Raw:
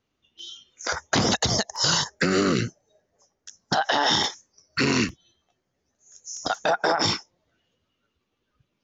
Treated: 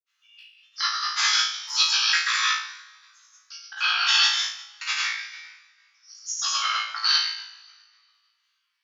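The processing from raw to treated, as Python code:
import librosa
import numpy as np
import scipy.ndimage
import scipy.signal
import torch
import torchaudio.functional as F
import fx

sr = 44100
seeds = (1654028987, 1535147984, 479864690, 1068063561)

p1 = fx.pitch_trill(x, sr, semitones=-3.0, every_ms=259)
p2 = scipy.signal.sosfilt(scipy.signal.butter(6, 1200.0, 'highpass', fs=sr, output='sos'), p1)
p3 = fx.rider(p2, sr, range_db=4, speed_s=0.5)
p4 = p2 + F.gain(torch.from_numpy(p3), -0.5).numpy()
p5 = fx.step_gate(p4, sr, bpm=114, pattern='xxx..xxx', floor_db=-60.0, edge_ms=4.5)
p6 = fx.rev_double_slope(p5, sr, seeds[0], early_s=0.6, late_s=2.0, knee_db=-20, drr_db=-5.0)
p7 = fx.granulator(p6, sr, seeds[1], grain_ms=100.0, per_s=20.0, spray_ms=100.0, spread_st=0)
p8 = p7 + fx.room_flutter(p7, sr, wall_m=3.1, rt60_s=0.46, dry=0)
y = F.gain(torch.from_numpy(p8), -7.5).numpy()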